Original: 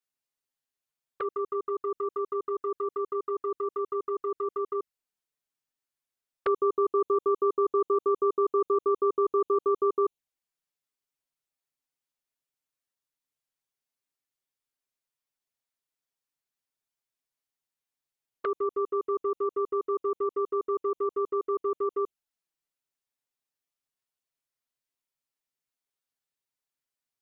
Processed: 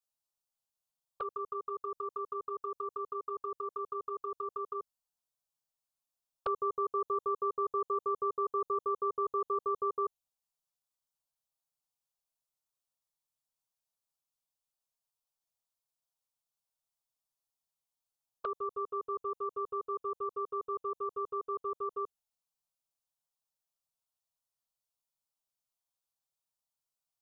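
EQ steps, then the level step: static phaser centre 800 Hz, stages 4; 0.0 dB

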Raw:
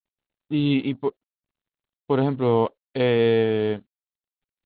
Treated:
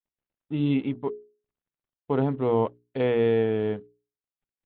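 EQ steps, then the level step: distance through air 380 m; hum notches 60/120/180/240/300/360/420 Hz; -2.0 dB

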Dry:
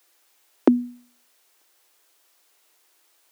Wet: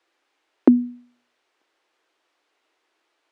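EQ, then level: distance through air 83 m; tone controls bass +11 dB, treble -9 dB; -1.5 dB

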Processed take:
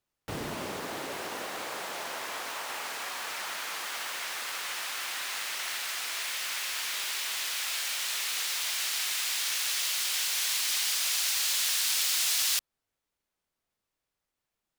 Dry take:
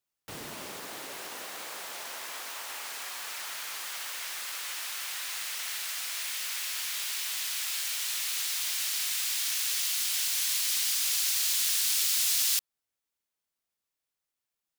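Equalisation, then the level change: tilt EQ -2.5 dB/octave; bass shelf 290 Hz -5.5 dB; +6.5 dB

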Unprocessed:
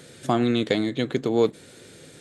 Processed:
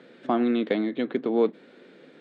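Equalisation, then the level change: elliptic band-pass 210–8500 Hz, stop band 40 dB; distance through air 380 m; 0.0 dB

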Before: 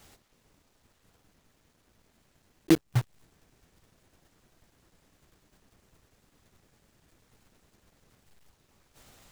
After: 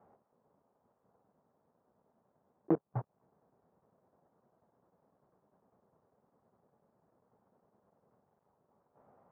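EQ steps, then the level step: high-pass 230 Hz 12 dB/octave; low-pass 1 kHz 24 dB/octave; peaking EQ 310 Hz -9 dB 0.55 oct; 0.0 dB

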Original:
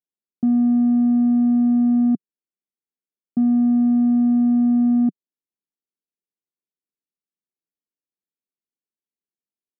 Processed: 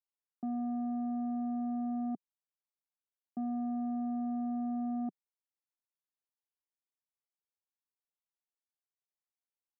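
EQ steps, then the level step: band-pass filter 880 Hz, Q 2.4; distance through air 260 m; 0.0 dB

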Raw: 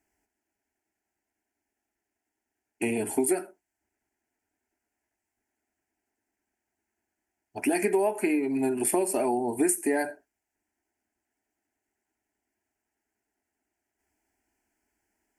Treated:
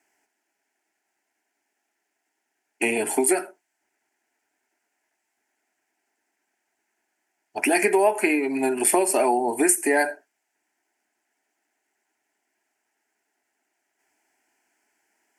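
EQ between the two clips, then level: frequency weighting A; +9.0 dB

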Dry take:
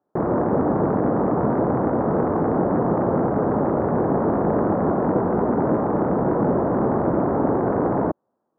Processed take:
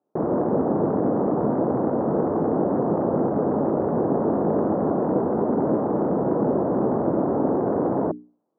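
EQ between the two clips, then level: band-pass filter 340 Hz, Q 0.56; hum notches 60/120/180/240/300/360/420 Hz; 0.0 dB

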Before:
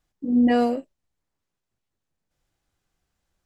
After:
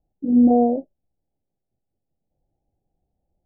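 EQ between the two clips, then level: Chebyshev low-pass 820 Hz, order 6; +4.0 dB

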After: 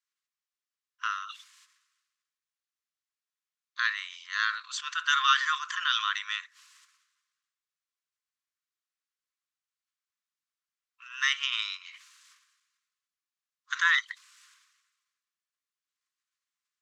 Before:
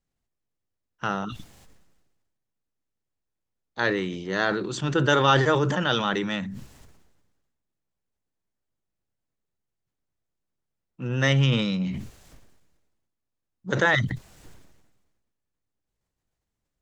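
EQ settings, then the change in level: brick-wall FIR high-pass 1 kHz; distance through air 64 m; treble shelf 3.5 kHz +8 dB; -2.0 dB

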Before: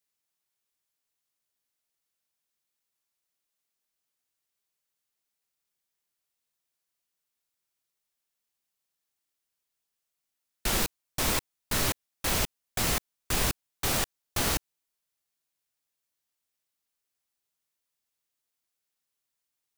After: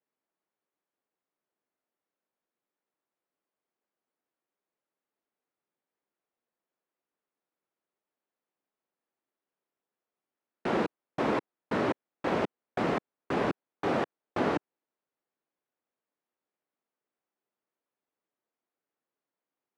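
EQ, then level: high-pass 190 Hz 12 dB/octave; low-pass 1.7 kHz 12 dB/octave; peaking EQ 350 Hz +8 dB 2.6 oct; 0.0 dB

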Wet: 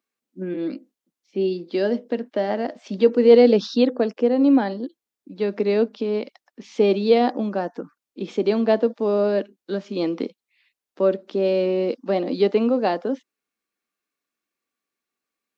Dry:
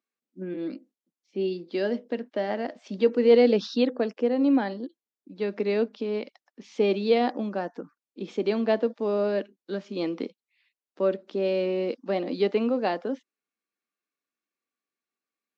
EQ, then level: dynamic bell 2.2 kHz, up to -4 dB, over -44 dBFS, Q 1; +5.5 dB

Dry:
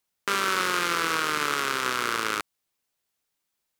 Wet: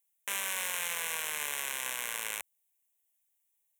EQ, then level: tone controls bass -11 dB, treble +13 dB; peaking EQ 63 Hz +3.5 dB; static phaser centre 1.3 kHz, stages 6; -7.5 dB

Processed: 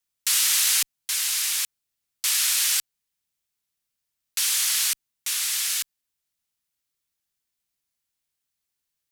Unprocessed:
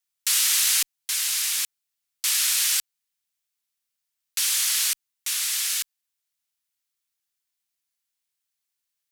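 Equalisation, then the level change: bass shelf 420 Hz +9.5 dB; 0.0 dB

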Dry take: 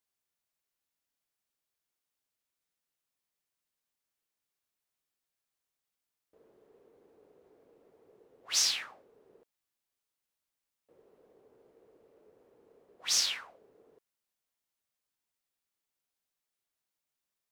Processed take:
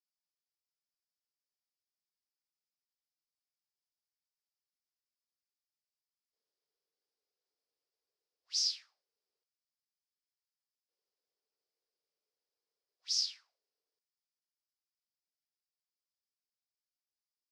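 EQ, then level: band-pass filter 5 kHz, Q 6; 0.0 dB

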